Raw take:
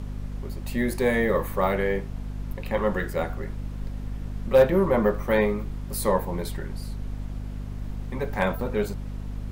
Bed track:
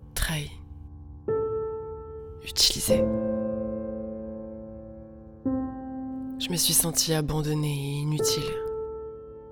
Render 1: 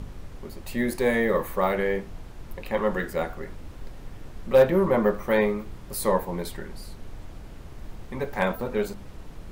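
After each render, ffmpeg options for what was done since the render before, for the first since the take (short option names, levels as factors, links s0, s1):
-af "bandreject=f=50:t=h:w=4,bandreject=f=100:t=h:w=4,bandreject=f=150:t=h:w=4,bandreject=f=200:t=h:w=4,bandreject=f=250:t=h:w=4"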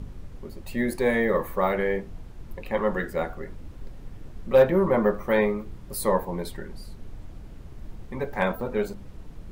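-af "afftdn=nr=6:nf=-42"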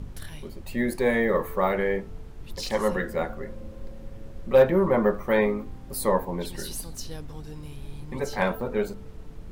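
-filter_complex "[1:a]volume=0.178[s0];[0:a][s0]amix=inputs=2:normalize=0"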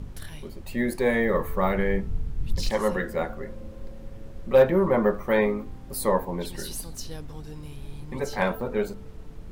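-filter_complex "[0:a]asettb=1/sr,asplit=3[s0][s1][s2];[s0]atrim=end=1.084[s3];[s1]atrim=start=1.08:end=2.7,asetpts=PTS-STARTPTS,afade=t=in:d=0.004:c=qsin,afade=t=out:st=1.616:d=0.004:c=qsin,asubboost=boost=9:cutoff=230[s4];[s2]atrim=start=2.696[s5];[s3][s4]acrossfade=d=0.004:c1=hsin:c2=qsin[s6];[s6][s5]acrossfade=d=0.004:c1=qsin:c2=hsin"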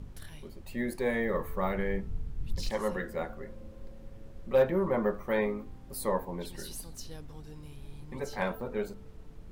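-af "volume=0.447"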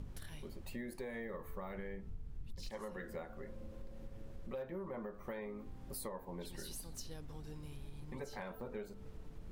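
-af "alimiter=limit=0.0668:level=0:latency=1:release=260,acompressor=threshold=0.00708:ratio=4"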